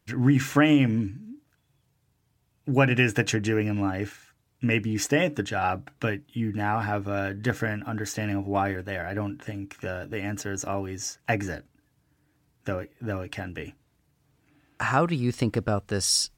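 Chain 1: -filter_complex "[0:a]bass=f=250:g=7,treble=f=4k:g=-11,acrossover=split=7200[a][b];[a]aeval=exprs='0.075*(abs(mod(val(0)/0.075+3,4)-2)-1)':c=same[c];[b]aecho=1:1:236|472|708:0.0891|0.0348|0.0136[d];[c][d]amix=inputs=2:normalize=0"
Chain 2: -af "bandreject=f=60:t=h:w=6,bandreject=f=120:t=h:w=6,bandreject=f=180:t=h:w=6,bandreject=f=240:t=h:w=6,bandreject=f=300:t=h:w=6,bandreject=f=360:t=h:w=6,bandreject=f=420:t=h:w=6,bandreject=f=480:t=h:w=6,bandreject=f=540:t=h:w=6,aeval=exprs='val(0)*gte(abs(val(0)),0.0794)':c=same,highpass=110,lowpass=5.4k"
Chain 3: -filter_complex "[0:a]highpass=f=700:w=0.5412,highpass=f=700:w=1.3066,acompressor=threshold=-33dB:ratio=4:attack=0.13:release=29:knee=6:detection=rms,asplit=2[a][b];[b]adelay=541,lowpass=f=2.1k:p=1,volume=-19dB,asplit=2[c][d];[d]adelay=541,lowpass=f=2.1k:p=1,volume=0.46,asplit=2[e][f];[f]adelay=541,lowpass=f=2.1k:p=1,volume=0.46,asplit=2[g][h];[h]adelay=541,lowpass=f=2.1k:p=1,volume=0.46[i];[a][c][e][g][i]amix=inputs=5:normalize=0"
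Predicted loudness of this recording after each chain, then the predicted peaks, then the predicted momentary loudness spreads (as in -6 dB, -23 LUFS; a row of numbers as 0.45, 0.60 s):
-30.5, -29.0, -40.5 LUFS; -20.5, -5.5, -26.5 dBFS; 7, 17, 9 LU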